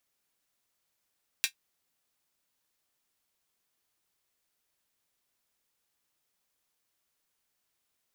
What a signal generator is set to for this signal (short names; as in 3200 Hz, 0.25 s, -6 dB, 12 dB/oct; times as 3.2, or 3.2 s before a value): closed hi-hat, high-pass 2300 Hz, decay 0.10 s